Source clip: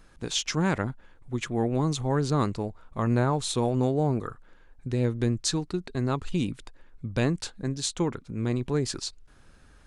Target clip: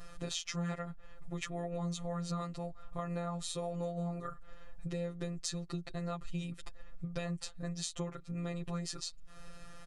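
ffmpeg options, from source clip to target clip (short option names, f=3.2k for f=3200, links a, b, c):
-af "afftfilt=real='hypot(re,im)*cos(PI*b)':imag='0':win_size=1024:overlap=0.75,aecho=1:1:7.4:0.96,acompressor=threshold=-45dB:ratio=4,volume=6.5dB"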